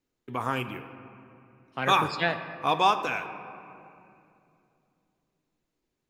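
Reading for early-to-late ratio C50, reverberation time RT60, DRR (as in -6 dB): 10.5 dB, 2.7 s, 8.0 dB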